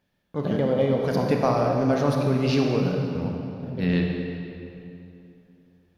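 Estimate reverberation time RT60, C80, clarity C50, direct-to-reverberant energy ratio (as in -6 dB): 2.9 s, 3.0 dB, 2.0 dB, 0.5 dB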